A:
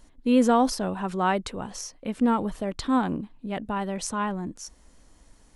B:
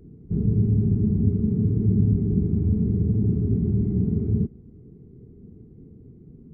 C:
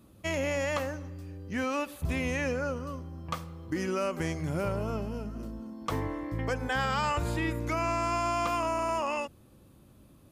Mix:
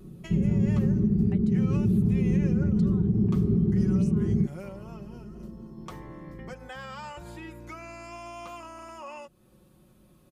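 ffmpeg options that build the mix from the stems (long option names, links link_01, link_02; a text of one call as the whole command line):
ffmpeg -i stem1.wav -i stem2.wav -i stem3.wav -filter_complex "[0:a]highpass=frequency=1100:poles=1,aeval=exprs='0.133*(abs(mod(val(0)/0.133+3,4)-2)-1)':channel_layout=same,aeval=exprs='val(0)*pow(10,-33*if(lt(mod(0.76*n/s,1),2*abs(0.76)/1000),1-mod(0.76*n/s,1)/(2*abs(0.76)/1000),(mod(0.76*n/s,1)-2*abs(0.76)/1000)/(1-2*abs(0.76)/1000))/20)':channel_layout=same,volume=-16.5dB,asplit=2[link_01][link_02];[1:a]volume=-0.5dB[link_03];[2:a]acompressor=threshold=-44dB:ratio=2,volume=-2.5dB[link_04];[link_02]apad=whole_len=454716[link_05];[link_04][link_05]sidechaincompress=threshold=-59dB:ratio=8:attack=23:release=127[link_06];[link_01][link_03][link_06]amix=inputs=3:normalize=0,aecho=1:1:5.5:0.61,alimiter=limit=-15.5dB:level=0:latency=1:release=72" out.wav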